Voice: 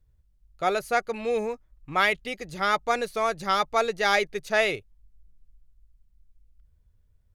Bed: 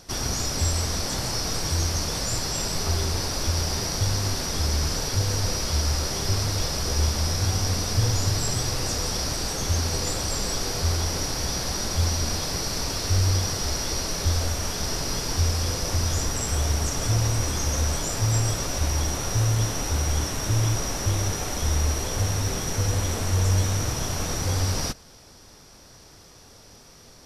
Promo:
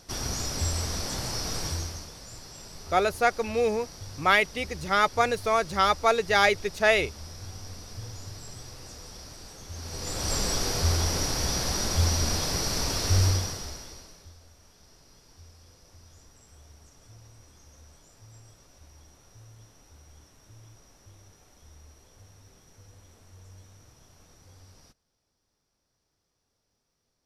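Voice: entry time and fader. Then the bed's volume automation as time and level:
2.30 s, +1.5 dB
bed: 0:01.66 −4.5 dB
0:02.14 −17.5 dB
0:09.69 −17.5 dB
0:10.32 −0.5 dB
0:13.25 −0.5 dB
0:14.37 −29 dB

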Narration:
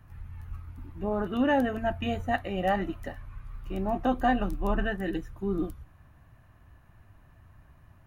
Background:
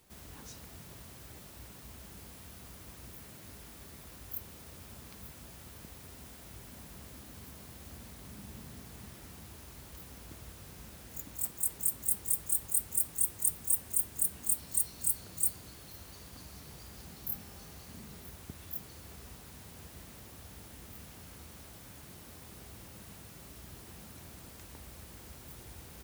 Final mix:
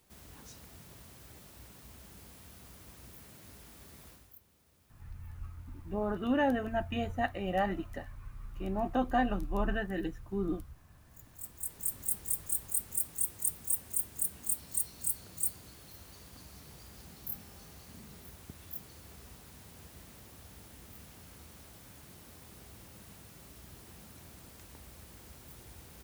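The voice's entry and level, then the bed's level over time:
4.90 s, −4.0 dB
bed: 0:04.09 −3 dB
0:04.40 −18 dB
0:10.88 −18 dB
0:11.94 −2.5 dB

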